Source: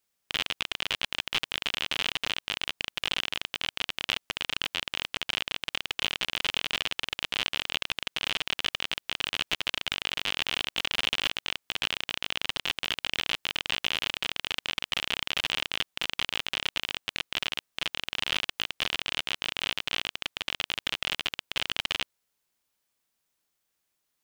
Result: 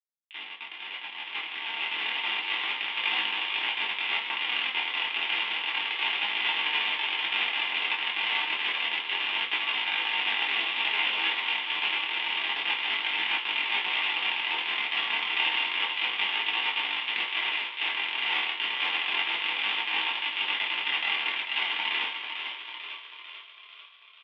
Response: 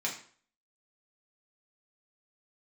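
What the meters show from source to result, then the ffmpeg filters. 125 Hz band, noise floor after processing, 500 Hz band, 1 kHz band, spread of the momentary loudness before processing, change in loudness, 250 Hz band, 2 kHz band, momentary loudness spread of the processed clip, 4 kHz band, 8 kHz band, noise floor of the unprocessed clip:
below −15 dB, −48 dBFS, −2.5 dB, +6.0 dB, 3 LU, +3.5 dB, −3.5 dB, +5.5 dB, 8 LU, +1.5 dB, below −25 dB, −80 dBFS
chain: -filter_complex "[0:a]agate=range=-33dB:threshold=-37dB:ratio=3:detection=peak,alimiter=limit=-18dB:level=0:latency=1,highpass=frequency=250:width=0.5412,highpass=frequency=250:width=1.3066,equalizer=frequency=260:width_type=q:width=4:gain=-7,equalizer=frequency=380:width_type=q:width=4:gain=-7,equalizer=frequency=610:width_type=q:width=4:gain=-9,equalizer=frequency=870:width_type=q:width=4:gain=10,equalizer=frequency=1400:width_type=q:width=4:gain=-5,equalizer=frequency=2100:width_type=q:width=4:gain=6,lowpass=frequency=2900:width=0.5412,lowpass=frequency=2900:width=1.3066,flanger=delay=18.5:depth=6.8:speed=0.3,asplit=8[link_01][link_02][link_03][link_04][link_05][link_06][link_07][link_08];[link_02]adelay=445,afreqshift=40,volume=-6.5dB[link_09];[link_03]adelay=890,afreqshift=80,volume=-11.4dB[link_10];[link_04]adelay=1335,afreqshift=120,volume=-16.3dB[link_11];[link_05]adelay=1780,afreqshift=160,volume=-21.1dB[link_12];[link_06]adelay=2225,afreqshift=200,volume=-26dB[link_13];[link_07]adelay=2670,afreqshift=240,volume=-30.9dB[link_14];[link_08]adelay=3115,afreqshift=280,volume=-35.8dB[link_15];[link_01][link_09][link_10][link_11][link_12][link_13][link_14][link_15]amix=inputs=8:normalize=0[link_16];[1:a]atrim=start_sample=2205,asetrate=66150,aresample=44100[link_17];[link_16][link_17]afir=irnorm=-1:irlink=0,dynaudnorm=framelen=530:gausssize=7:maxgain=11.5dB"

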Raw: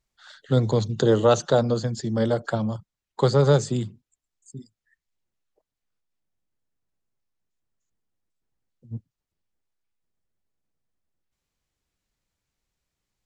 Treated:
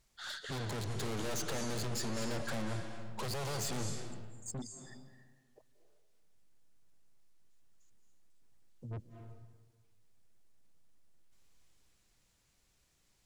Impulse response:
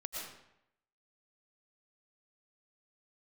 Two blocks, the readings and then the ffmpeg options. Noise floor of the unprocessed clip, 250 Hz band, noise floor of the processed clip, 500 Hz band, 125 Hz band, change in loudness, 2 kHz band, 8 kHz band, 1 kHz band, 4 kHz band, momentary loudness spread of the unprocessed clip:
below −85 dBFS, −15.5 dB, −73 dBFS, −20.5 dB, −16.0 dB, −17.0 dB, −6.5 dB, −2.5 dB, −13.5 dB, −7.0 dB, 18 LU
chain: -filter_complex "[0:a]alimiter=limit=-15.5dB:level=0:latency=1,aeval=exprs='(tanh(178*val(0)+0.2)-tanh(0.2))/178':channel_layout=same,asplit=2[link_01][link_02];[1:a]atrim=start_sample=2205,asetrate=23373,aresample=44100,highshelf=frequency=3400:gain=10[link_03];[link_02][link_03]afir=irnorm=-1:irlink=0,volume=-8dB[link_04];[link_01][link_04]amix=inputs=2:normalize=0,volume=4dB"

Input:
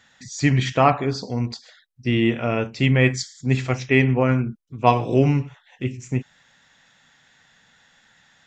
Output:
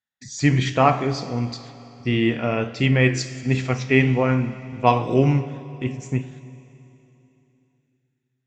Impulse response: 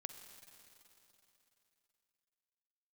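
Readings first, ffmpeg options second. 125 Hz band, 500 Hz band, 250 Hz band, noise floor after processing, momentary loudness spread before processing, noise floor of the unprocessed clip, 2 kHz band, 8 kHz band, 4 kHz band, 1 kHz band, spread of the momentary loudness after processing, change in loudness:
0.0 dB, 0.0 dB, 0.0 dB, −75 dBFS, 12 LU, −59 dBFS, 0.0 dB, can't be measured, 0.0 dB, 0.0 dB, 12 LU, 0.0 dB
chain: -filter_complex "[0:a]agate=range=-35dB:threshold=-45dB:ratio=16:detection=peak,flanger=delay=9.8:depth=5.8:regen=84:speed=1.4:shape=triangular,asplit=2[link_01][link_02];[1:a]atrim=start_sample=2205[link_03];[link_02][link_03]afir=irnorm=-1:irlink=0,volume=4dB[link_04];[link_01][link_04]amix=inputs=2:normalize=0,volume=-1.5dB"

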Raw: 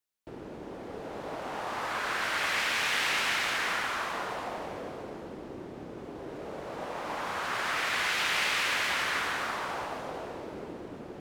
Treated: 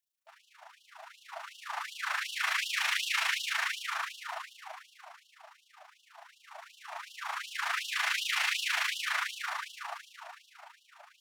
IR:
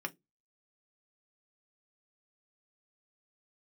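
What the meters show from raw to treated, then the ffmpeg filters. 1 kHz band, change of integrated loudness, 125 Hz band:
−5.5 dB, −1.5 dB, below −40 dB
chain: -filter_complex "[0:a]tremolo=f=27:d=0.667,asplit=2[link_01][link_02];[1:a]atrim=start_sample=2205,highshelf=frequency=5900:gain=11[link_03];[link_02][link_03]afir=irnorm=-1:irlink=0,volume=-13.5dB[link_04];[link_01][link_04]amix=inputs=2:normalize=0,afftfilt=real='re*gte(b*sr/1024,600*pow(2800/600,0.5+0.5*sin(2*PI*2.7*pts/sr)))':imag='im*gte(b*sr/1024,600*pow(2800/600,0.5+0.5*sin(2*PI*2.7*pts/sr)))':win_size=1024:overlap=0.75"

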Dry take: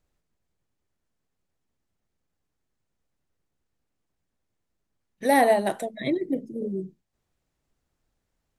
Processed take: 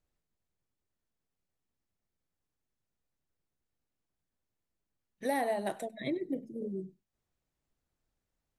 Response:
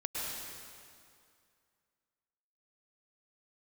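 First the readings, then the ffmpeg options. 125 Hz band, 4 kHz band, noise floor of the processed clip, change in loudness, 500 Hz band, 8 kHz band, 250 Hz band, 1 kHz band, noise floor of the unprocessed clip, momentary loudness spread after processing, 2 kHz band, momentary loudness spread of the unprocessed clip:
−8.0 dB, −10.0 dB, below −85 dBFS, −11.0 dB, −11.0 dB, −11.0 dB, −9.0 dB, −12.5 dB, −80 dBFS, 8 LU, −12.0 dB, 13 LU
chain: -filter_complex "[0:a]acompressor=threshold=-20dB:ratio=6[link_01];[1:a]atrim=start_sample=2205,atrim=end_sample=4410[link_02];[link_01][link_02]afir=irnorm=-1:irlink=0,volume=-5dB"

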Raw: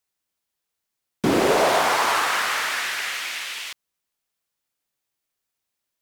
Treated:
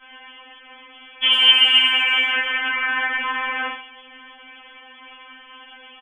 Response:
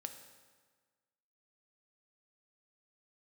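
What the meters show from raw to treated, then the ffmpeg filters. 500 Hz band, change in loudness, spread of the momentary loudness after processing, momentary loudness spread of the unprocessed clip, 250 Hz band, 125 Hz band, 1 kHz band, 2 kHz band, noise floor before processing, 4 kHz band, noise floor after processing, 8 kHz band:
−16.0 dB, +5.5 dB, 14 LU, 11 LU, −12.5 dB, below −35 dB, −4.5 dB, +6.0 dB, −82 dBFS, +14.0 dB, −46 dBFS, below −20 dB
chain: -filter_complex "[0:a]aeval=exprs='val(0)+0.5*0.0282*sgn(val(0))':channel_layout=same,agate=range=-33dB:threshold=-32dB:ratio=3:detection=peak,adynamicequalizer=threshold=0.0251:dfrequency=810:dqfactor=0.87:tfrequency=810:tqfactor=0.87:attack=5:release=100:ratio=0.375:range=2.5:mode=cutabove:tftype=bell,asplit=2[link_01][link_02];[link_02]acompressor=threshold=-32dB:ratio=6,volume=-3dB[link_03];[link_01][link_03]amix=inputs=2:normalize=0,asplit=2[link_04][link_05];[link_05]adelay=17,volume=-5dB[link_06];[link_04][link_06]amix=inputs=2:normalize=0,acrossover=split=770|2200[link_07][link_08][link_09];[link_07]acompressor=threshold=-21dB:ratio=4[link_10];[link_08]acompressor=threshold=-30dB:ratio=4[link_11];[link_09]acompressor=threshold=-38dB:ratio=4[link_12];[link_10][link_11][link_12]amix=inputs=3:normalize=0,lowpass=frequency=3000:width_type=q:width=0.5098,lowpass=frequency=3000:width_type=q:width=0.6013,lowpass=frequency=3000:width_type=q:width=0.9,lowpass=frequency=3000:width_type=q:width=2.563,afreqshift=-3500,asplit=2[link_13][link_14];[link_14]adelay=90,highpass=300,lowpass=3400,asoftclip=type=hard:threshold=-20.5dB,volume=-13dB[link_15];[link_13][link_15]amix=inputs=2:normalize=0,afftfilt=real='re*3.46*eq(mod(b,12),0)':imag='im*3.46*eq(mod(b,12),0)':win_size=2048:overlap=0.75,volume=9dB"

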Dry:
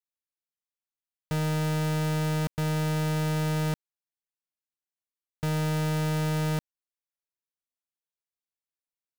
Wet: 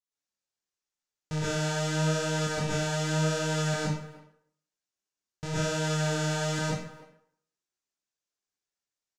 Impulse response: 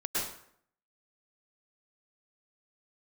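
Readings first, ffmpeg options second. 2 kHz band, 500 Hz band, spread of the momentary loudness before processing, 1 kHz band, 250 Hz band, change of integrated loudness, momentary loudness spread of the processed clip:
+4.0 dB, +2.5 dB, 4 LU, +0.5 dB, −2.0 dB, −1.0 dB, 9 LU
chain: -filter_complex "[0:a]flanger=delay=17:depth=7.9:speed=0.86,lowpass=frequency=6600:width_type=q:width=2,asplit=2[link_01][link_02];[link_02]adelay=300,highpass=300,lowpass=3400,asoftclip=type=hard:threshold=-31dB,volume=-16dB[link_03];[link_01][link_03]amix=inputs=2:normalize=0[link_04];[1:a]atrim=start_sample=2205[link_05];[link_04][link_05]afir=irnorm=-1:irlink=0"

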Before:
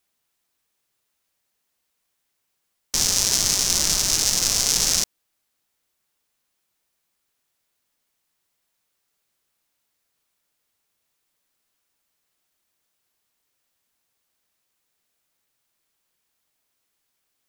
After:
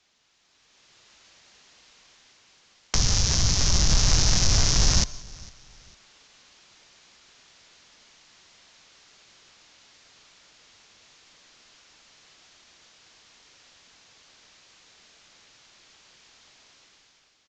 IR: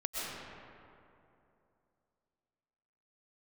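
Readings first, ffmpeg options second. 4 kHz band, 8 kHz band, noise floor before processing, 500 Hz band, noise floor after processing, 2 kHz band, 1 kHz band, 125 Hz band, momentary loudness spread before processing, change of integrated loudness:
−3.0 dB, −5.5 dB, −76 dBFS, +0.5 dB, −63 dBFS, −1.0 dB, +1.0 dB, +13.0 dB, 4 LU, −3.5 dB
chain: -filter_complex "[0:a]lowpass=5000,highshelf=frequency=3100:gain=8.5,acrossover=split=140[link_01][link_02];[link_02]acompressor=threshold=-33dB:ratio=10[link_03];[link_01][link_03]amix=inputs=2:normalize=0,asplit=2[link_04][link_05];[link_05]alimiter=level_in=1.5dB:limit=-24dB:level=0:latency=1,volume=-1.5dB,volume=0.5dB[link_06];[link_04][link_06]amix=inputs=2:normalize=0,dynaudnorm=framelen=220:gausssize=7:maxgain=12dB,aresample=16000,asoftclip=type=tanh:threshold=-15dB,aresample=44100,aecho=1:1:453|906:0.0668|0.0214[link_07];[1:a]atrim=start_sample=2205,afade=type=out:start_time=0.14:duration=0.01,atrim=end_sample=6615,asetrate=24255,aresample=44100[link_08];[link_07][link_08]afir=irnorm=-1:irlink=0,volume=2.5dB"

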